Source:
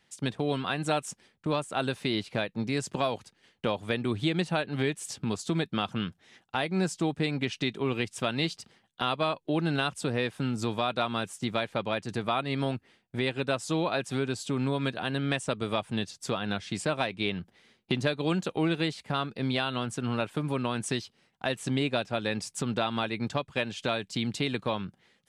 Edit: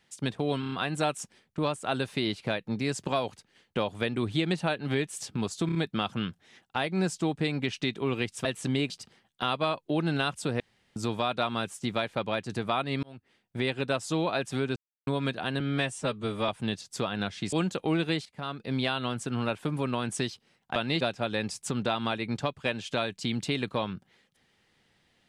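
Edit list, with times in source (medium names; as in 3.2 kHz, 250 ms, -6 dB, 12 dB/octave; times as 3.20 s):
0.60 s: stutter 0.03 s, 5 plays
5.54 s: stutter 0.03 s, 4 plays
8.24–8.49 s: swap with 21.47–21.92 s
10.19–10.55 s: room tone
12.62–13.17 s: fade in linear
14.35–14.66 s: mute
15.19–15.78 s: stretch 1.5×
16.82–18.24 s: delete
18.97–19.47 s: fade in, from -14.5 dB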